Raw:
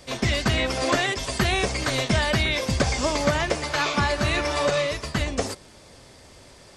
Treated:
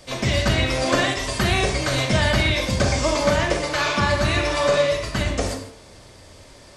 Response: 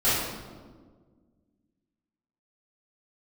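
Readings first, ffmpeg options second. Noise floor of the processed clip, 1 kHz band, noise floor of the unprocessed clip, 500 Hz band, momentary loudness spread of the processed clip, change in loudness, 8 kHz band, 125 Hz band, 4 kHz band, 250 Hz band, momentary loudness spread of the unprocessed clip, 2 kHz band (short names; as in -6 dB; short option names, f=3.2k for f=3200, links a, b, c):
-46 dBFS, +2.0 dB, -49 dBFS, +4.0 dB, 5 LU, +3.0 dB, +2.0 dB, +4.0 dB, +2.5 dB, +2.5 dB, 4 LU, +2.5 dB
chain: -filter_complex "[0:a]bandreject=f=75.12:t=h:w=4,bandreject=f=150.24:t=h:w=4,bandreject=f=225.36:t=h:w=4,bandreject=f=300.48:t=h:w=4,bandreject=f=375.6:t=h:w=4,bandreject=f=450.72:t=h:w=4,bandreject=f=525.84:t=h:w=4,bandreject=f=600.96:t=h:w=4,bandreject=f=676.08:t=h:w=4,bandreject=f=751.2:t=h:w=4,bandreject=f=826.32:t=h:w=4,bandreject=f=901.44:t=h:w=4,bandreject=f=976.56:t=h:w=4,bandreject=f=1.05168k:t=h:w=4,bandreject=f=1.1268k:t=h:w=4,bandreject=f=1.20192k:t=h:w=4,bandreject=f=1.27704k:t=h:w=4,bandreject=f=1.35216k:t=h:w=4,bandreject=f=1.42728k:t=h:w=4,bandreject=f=1.5024k:t=h:w=4,bandreject=f=1.57752k:t=h:w=4,bandreject=f=1.65264k:t=h:w=4,bandreject=f=1.72776k:t=h:w=4,bandreject=f=1.80288k:t=h:w=4,bandreject=f=1.878k:t=h:w=4,bandreject=f=1.95312k:t=h:w=4,bandreject=f=2.02824k:t=h:w=4,bandreject=f=2.10336k:t=h:w=4,bandreject=f=2.17848k:t=h:w=4,bandreject=f=2.2536k:t=h:w=4,bandreject=f=2.32872k:t=h:w=4,bandreject=f=2.40384k:t=h:w=4,bandreject=f=2.47896k:t=h:w=4,bandreject=f=2.55408k:t=h:w=4,bandreject=f=2.6292k:t=h:w=4,bandreject=f=2.70432k:t=h:w=4,asplit=2[a][b];[1:a]atrim=start_sample=2205,atrim=end_sample=6174,asetrate=34839,aresample=44100[c];[b][c]afir=irnorm=-1:irlink=0,volume=-18dB[d];[a][d]amix=inputs=2:normalize=0"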